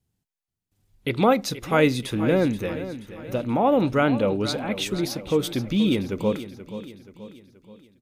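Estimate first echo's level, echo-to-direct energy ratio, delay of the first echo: −13.0 dB, −12.0 dB, 479 ms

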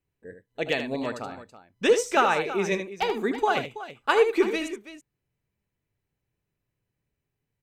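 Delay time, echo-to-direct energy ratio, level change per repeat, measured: 77 ms, −7.5 dB, repeats not evenly spaced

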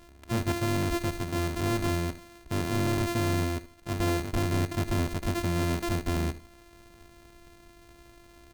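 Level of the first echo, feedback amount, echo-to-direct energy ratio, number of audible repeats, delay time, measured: −16.0 dB, 29%, −15.5 dB, 2, 75 ms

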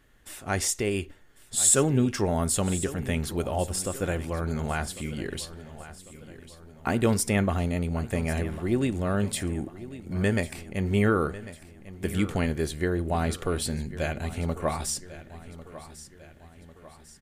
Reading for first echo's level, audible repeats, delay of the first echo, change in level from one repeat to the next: −15.5 dB, 4, 1,098 ms, −6.0 dB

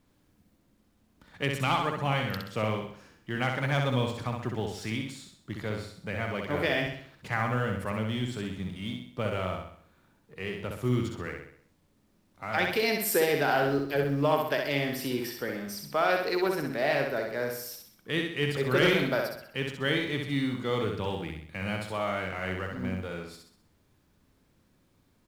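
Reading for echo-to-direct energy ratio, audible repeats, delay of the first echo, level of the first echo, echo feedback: −3.0 dB, 5, 64 ms, −4.0 dB, 46%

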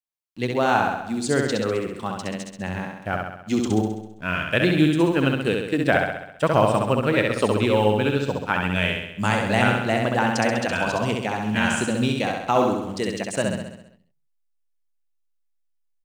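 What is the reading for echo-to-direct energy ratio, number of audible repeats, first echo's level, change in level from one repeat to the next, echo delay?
−2.0 dB, 7, −3.5 dB, −5.0 dB, 66 ms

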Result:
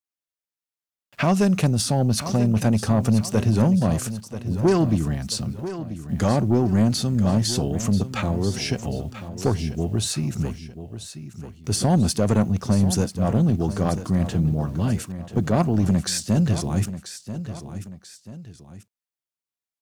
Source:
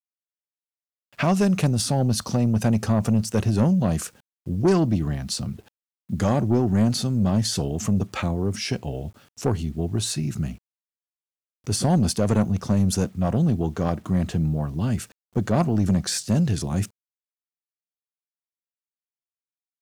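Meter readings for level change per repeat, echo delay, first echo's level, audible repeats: −7.5 dB, 987 ms, −12.0 dB, 2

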